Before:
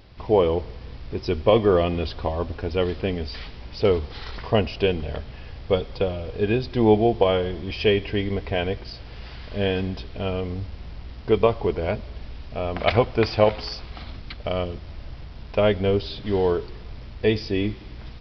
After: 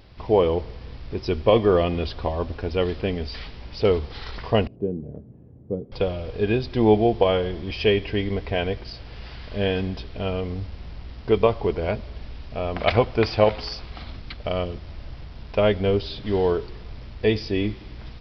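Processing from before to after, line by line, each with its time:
4.67–5.92 s: Butterworth band-pass 210 Hz, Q 0.84

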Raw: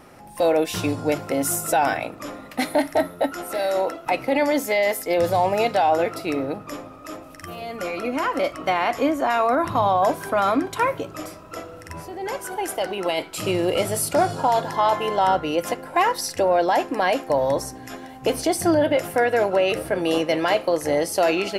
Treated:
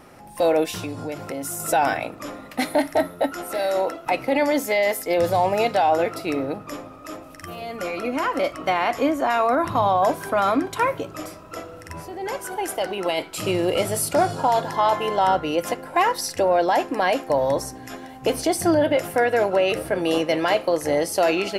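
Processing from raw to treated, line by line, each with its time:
0.70–1.60 s: compression 3:1, threshold -28 dBFS

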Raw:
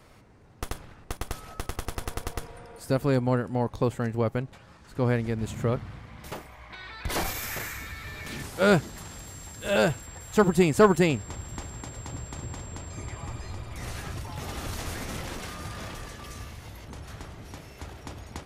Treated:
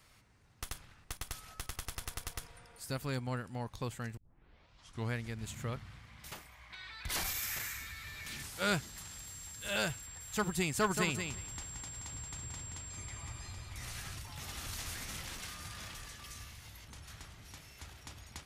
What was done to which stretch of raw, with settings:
4.17 s: tape start 0.95 s
10.73–14.16 s: feedback delay 177 ms, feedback 18%, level -6.5 dB
whole clip: amplifier tone stack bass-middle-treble 5-5-5; trim +4 dB

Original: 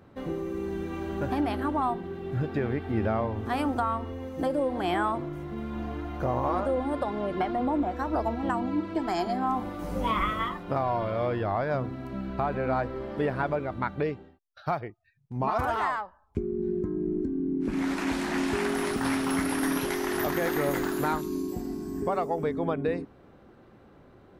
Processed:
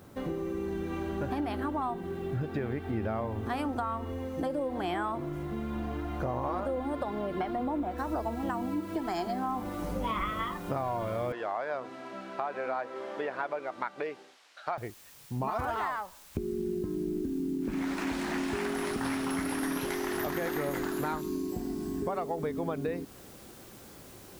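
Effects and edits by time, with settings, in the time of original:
7.98 s: noise floor step -67 dB -56 dB
11.32–14.78 s: band-pass 510–4400 Hz
whole clip: compression 2.5:1, threshold -34 dBFS; trim +2 dB

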